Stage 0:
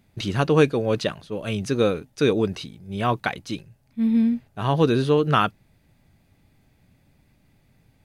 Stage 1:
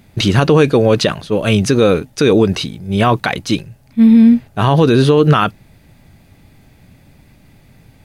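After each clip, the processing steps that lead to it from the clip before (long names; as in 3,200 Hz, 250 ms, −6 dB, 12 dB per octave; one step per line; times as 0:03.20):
boost into a limiter +15 dB
level −1 dB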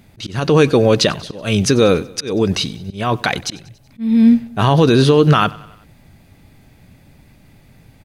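dynamic equaliser 5,400 Hz, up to +5 dB, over −38 dBFS, Q 1
volume swells 309 ms
repeating echo 94 ms, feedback 57%, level −22 dB
level −1 dB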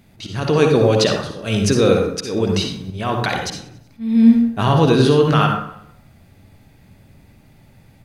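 convolution reverb RT60 0.65 s, pre-delay 47 ms, DRR 2 dB
level −4 dB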